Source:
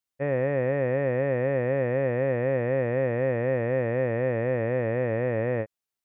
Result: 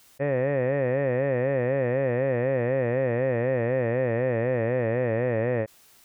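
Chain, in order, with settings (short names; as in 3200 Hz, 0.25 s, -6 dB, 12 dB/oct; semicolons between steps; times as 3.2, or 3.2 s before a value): fast leveller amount 50%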